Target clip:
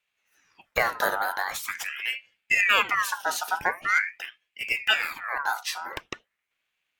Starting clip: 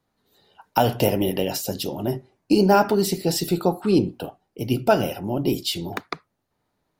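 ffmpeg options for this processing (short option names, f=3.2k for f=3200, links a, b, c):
-af "aeval=exprs='val(0)*sin(2*PI*1800*n/s+1800*0.4/0.44*sin(2*PI*0.44*n/s))':c=same,volume=-2.5dB"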